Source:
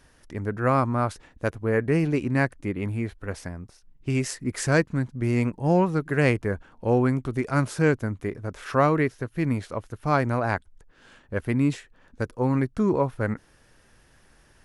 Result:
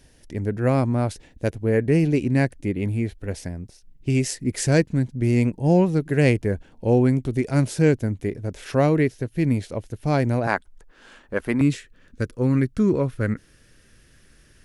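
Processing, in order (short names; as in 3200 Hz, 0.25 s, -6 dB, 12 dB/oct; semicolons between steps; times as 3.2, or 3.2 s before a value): bell 1200 Hz -14.5 dB 0.96 oct, from 10.47 s 100 Hz, from 11.61 s 860 Hz; gain +4.5 dB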